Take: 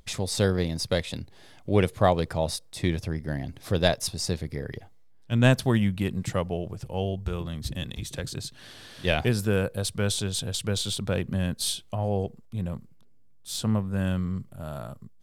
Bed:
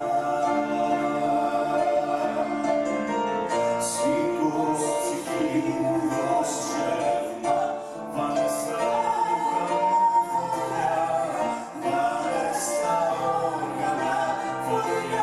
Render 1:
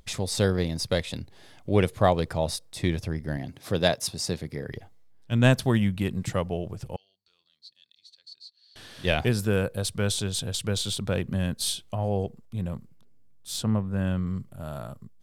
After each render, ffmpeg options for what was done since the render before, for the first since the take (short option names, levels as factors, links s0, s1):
-filter_complex "[0:a]asettb=1/sr,asplit=3[s0][s1][s2];[s0]atrim=end=3.374[s3];[s1]atrim=start=3.37:end=4.69,asetpts=PTS-STARTPTS,afade=t=in:d=0.004:c=qsin,afade=t=out:st=1.316:d=0.004:c=qsin,highpass=110[s4];[s2]atrim=start=4.686[s5];[s3][s4]acrossfade=d=0.004:c1=hsin:c2=qsin[s6];[s6][s5]acrossfade=d=0.004:c1=qsin:c2=hsin,asettb=1/sr,asplit=3[s7][s8][s9];[s7]atrim=end=6.964[s10];[s8]atrim=start=6.96:end=8.76,asetpts=PTS-STARTPTS,afade=t=in:d=0.004:c=qsin,afade=t=out:st=1.796:d=0.004:c=qsin,bandpass=f=4400:t=q:w=16[s11];[s9]atrim=start=8.756[s12];[s10][s11]acrossfade=d=0.004:c1=hsin:c2=qsin[s13];[s13][s12]acrossfade=d=0.004:c1=qsin:c2=hsin,asettb=1/sr,asplit=3[s14][s15][s16];[s14]atrim=end=13.624[s17];[s15]atrim=start=13.62:end=14.27,asetpts=PTS-STARTPTS,afade=t=in:d=0.004:c=qsin,afade=t=out:st=0.646:d=0.004:c=qsin,highshelf=f=3800:g=-9[s18];[s16]atrim=start=14.266[s19];[s17][s18]acrossfade=d=0.004:c1=hsin:c2=qsin[s20];[s20][s19]acrossfade=d=0.004:c1=qsin:c2=hsin"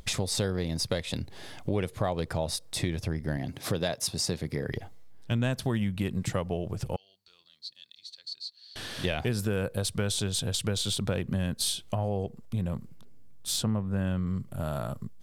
-filter_complex "[0:a]asplit=2[s0][s1];[s1]alimiter=limit=0.15:level=0:latency=1:release=109,volume=1.41[s2];[s0][s2]amix=inputs=2:normalize=0,acompressor=threshold=0.0355:ratio=3"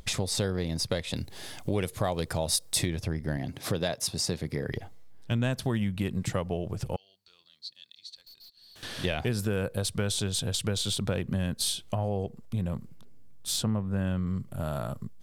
-filter_complex "[0:a]asettb=1/sr,asplit=3[s0][s1][s2];[s0]atrim=end=1.174[s3];[s1]atrim=start=1.17:end=2.86,asetpts=PTS-STARTPTS,afade=t=in:d=0.004:c=qsin,afade=t=out:st=1.686:d=0.004:c=qsin,highshelf=f=4800:g=10.5[s4];[s2]atrim=start=2.856[s5];[s3][s4]acrossfade=d=0.004:c1=hsin:c2=qsin[s6];[s6][s5]acrossfade=d=0.004:c1=qsin:c2=hsin,asettb=1/sr,asplit=3[s7][s8][s9];[s7]atrim=end=8.164[s10];[s8]atrim=start=8.16:end=8.83,asetpts=PTS-STARTPTS,afade=t=in:d=0.004:c=qsin,afade=t=out:st=0.666:d=0.004:c=qsin,aeval=exprs='(tanh(316*val(0)+0.25)-tanh(0.25))/316':c=same[s11];[s9]atrim=start=8.826[s12];[s10][s11]acrossfade=d=0.004:c1=hsin:c2=qsin[s13];[s13][s12]acrossfade=d=0.004:c1=qsin:c2=hsin"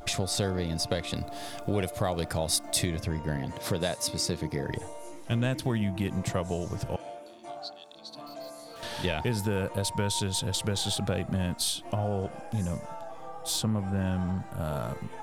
-filter_complex "[1:a]volume=0.126[s0];[0:a][s0]amix=inputs=2:normalize=0"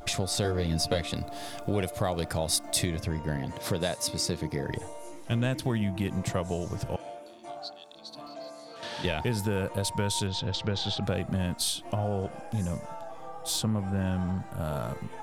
-filter_complex "[0:a]asettb=1/sr,asplit=3[s0][s1][s2];[s0]atrim=end=0.434[s3];[s1]atrim=start=0.43:end=1.07,asetpts=PTS-STARTPTS,afade=t=in:d=0.004:c=qsin,afade=t=out:st=0.636:d=0.004:c=qsin,asplit=2[s4][s5];[s5]adelay=13,volume=0.668[s6];[s4][s6]amix=inputs=2:normalize=0,atrim=end_sample=28224[s7];[s2]atrim=start=1.066[s8];[s3][s7]acrossfade=d=0.004:c1=hsin:c2=qsin[s9];[s9][s8]acrossfade=d=0.004:c1=qsin:c2=hsin,asettb=1/sr,asplit=3[s10][s11][s12];[s10]atrim=end=8.274[s13];[s11]atrim=start=8.27:end=9.05,asetpts=PTS-STARTPTS,afade=t=in:d=0.004:c=qsin,afade=t=out:st=0.776:d=0.004:c=qsin,highpass=140,lowpass=6700[s14];[s12]atrim=start=9.046[s15];[s13][s14]acrossfade=d=0.004:c1=hsin:c2=qsin[s16];[s16][s15]acrossfade=d=0.004:c1=qsin:c2=hsin,asettb=1/sr,asplit=3[s17][s18][s19];[s17]atrim=end=10.274[s20];[s18]atrim=start=10.27:end=11.03,asetpts=PTS-STARTPTS,afade=t=in:d=0.004:c=qsin,afade=t=out:st=0.756:d=0.004:c=qsin,lowpass=f=5100:w=0.5412,lowpass=f=5100:w=1.3066[s21];[s19]atrim=start=11.026[s22];[s20][s21]acrossfade=d=0.004:c1=hsin:c2=qsin[s23];[s23][s22]acrossfade=d=0.004:c1=qsin:c2=hsin"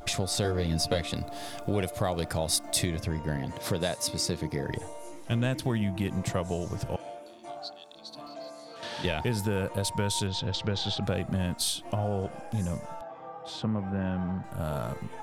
-filter_complex "[0:a]asettb=1/sr,asplit=3[s0][s1][s2];[s0]atrim=end=13.014[s3];[s1]atrim=start=13.01:end=14.44,asetpts=PTS-STARTPTS,afade=t=in:d=0.004:c=qsin,afade=t=out:st=1.426:d=0.004:c=qsin,highpass=110,lowpass=2700[s4];[s2]atrim=start=14.436[s5];[s3][s4]acrossfade=d=0.004:c1=hsin:c2=qsin[s6];[s6][s5]acrossfade=d=0.004:c1=qsin:c2=hsin"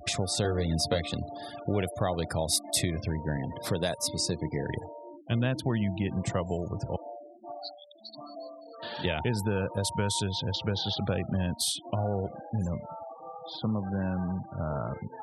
-af "highpass=f=58:w=0.5412,highpass=f=58:w=1.3066,afftfilt=real='re*gte(hypot(re,im),0.0126)':imag='im*gte(hypot(re,im),0.0126)':win_size=1024:overlap=0.75"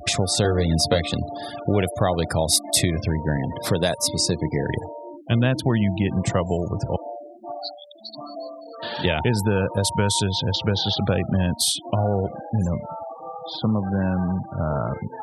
-af "volume=2.51"